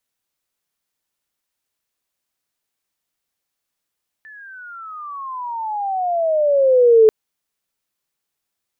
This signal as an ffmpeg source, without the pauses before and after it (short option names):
-f lavfi -i "aevalsrc='pow(10,(-6+31.5*(t/2.84-1))/20)*sin(2*PI*1770*2.84/(-24.5*log(2)/12)*(exp(-24.5*log(2)/12*t/2.84)-1))':d=2.84:s=44100"